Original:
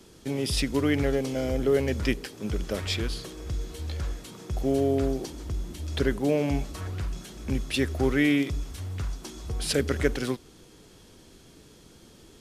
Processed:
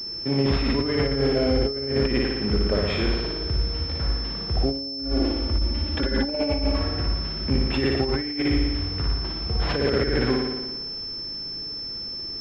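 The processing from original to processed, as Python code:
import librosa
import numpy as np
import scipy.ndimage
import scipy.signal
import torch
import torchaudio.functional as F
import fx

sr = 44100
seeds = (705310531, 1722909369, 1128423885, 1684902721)

y = fx.comb(x, sr, ms=3.5, depth=0.74, at=(4.72, 6.8))
y = fx.room_flutter(y, sr, wall_m=10.0, rt60_s=1.2)
y = fx.over_compress(y, sr, threshold_db=-24.0, ratio=-0.5)
y = fx.pwm(y, sr, carrier_hz=5300.0)
y = F.gain(torch.from_numpy(y), 2.5).numpy()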